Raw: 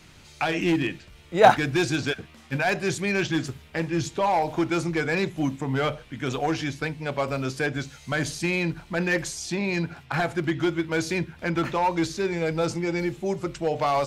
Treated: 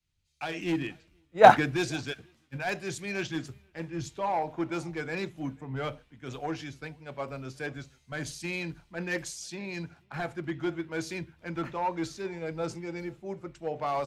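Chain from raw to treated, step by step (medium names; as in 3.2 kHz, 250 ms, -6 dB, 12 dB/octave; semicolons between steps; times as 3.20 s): echo from a far wall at 84 m, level -23 dB; three bands expanded up and down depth 100%; trim -8.5 dB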